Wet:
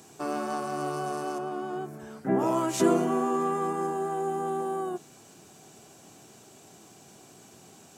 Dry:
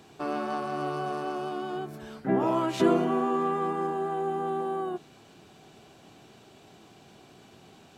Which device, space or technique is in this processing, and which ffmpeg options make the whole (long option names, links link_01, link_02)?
budget condenser microphone: -filter_complex "[0:a]highpass=86,highshelf=frequency=5100:width_type=q:width=1.5:gain=10,asettb=1/sr,asplit=3[link_01][link_02][link_03];[link_01]atrim=end=1.384[link_04];[link_02]atrim=start=1.38:end=2.39,asetpts=PTS-STARTPTS,afade=type=in:duration=0.004:curve=qsin,afade=type=out:start_time=1.006:duration=0.004:curve=qsin,acrossover=split=2500[link_05][link_06];[link_06]acompressor=threshold=-58dB:ratio=4:attack=1:release=60[link_07];[link_05][link_07]amix=inputs=2:normalize=0[link_08];[link_03]atrim=start=2.386[link_09];[link_04][link_08]acrossfade=duration=0.004:curve1=hsin:curve2=qsin[link_10];[link_10][link_09]acrossfade=duration=0.004:curve1=qsin:curve2=hsin"